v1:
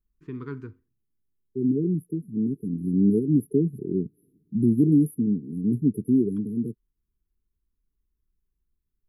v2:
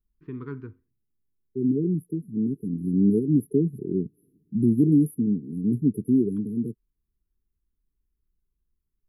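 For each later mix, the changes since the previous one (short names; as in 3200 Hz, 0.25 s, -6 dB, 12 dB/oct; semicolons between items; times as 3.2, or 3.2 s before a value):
first voice: add air absorption 230 m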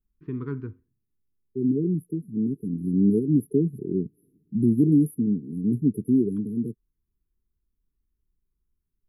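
first voice: add low shelf 440 Hz +5.5 dB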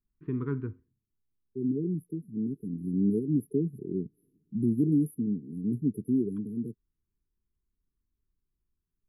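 first voice: add LPF 3100 Hz; second voice -6.0 dB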